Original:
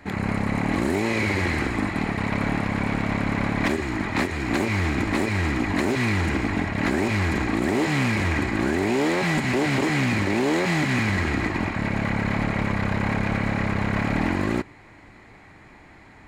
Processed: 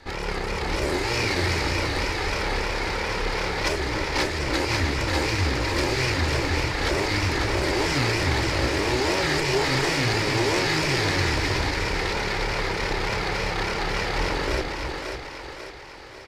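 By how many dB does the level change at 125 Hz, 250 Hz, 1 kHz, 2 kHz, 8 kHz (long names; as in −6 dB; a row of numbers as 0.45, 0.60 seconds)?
−2.0, −6.5, +1.0, +0.5, +6.0 decibels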